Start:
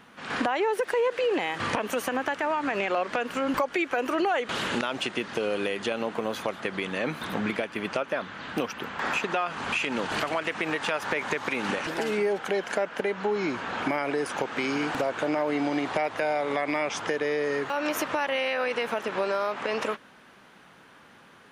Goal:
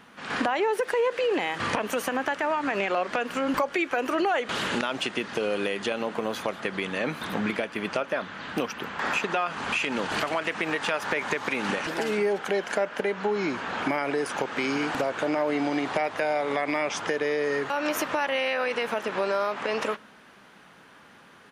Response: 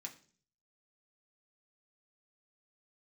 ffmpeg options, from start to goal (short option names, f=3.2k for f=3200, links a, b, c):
-filter_complex "[0:a]aresample=32000,aresample=44100,asplit=2[a][b];[1:a]atrim=start_sample=2205,asetrate=31752,aresample=44100[c];[b][c]afir=irnorm=-1:irlink=0,volume=-13dB[d];[a][d]amix=inputs=2:normalize=0"